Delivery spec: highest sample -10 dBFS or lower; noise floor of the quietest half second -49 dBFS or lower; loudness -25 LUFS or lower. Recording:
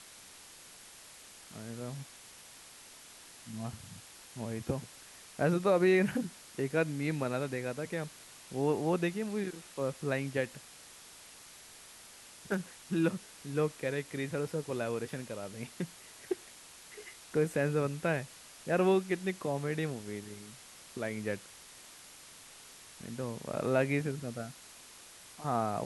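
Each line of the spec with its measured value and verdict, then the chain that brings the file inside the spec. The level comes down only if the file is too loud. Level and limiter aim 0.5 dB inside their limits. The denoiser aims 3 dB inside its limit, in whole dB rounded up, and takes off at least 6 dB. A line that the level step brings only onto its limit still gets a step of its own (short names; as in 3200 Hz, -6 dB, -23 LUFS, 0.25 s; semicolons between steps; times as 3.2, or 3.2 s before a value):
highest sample -16.0 dBFS: OK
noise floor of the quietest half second -53 dBFS: OK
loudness -34.0 LUFS: OK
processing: none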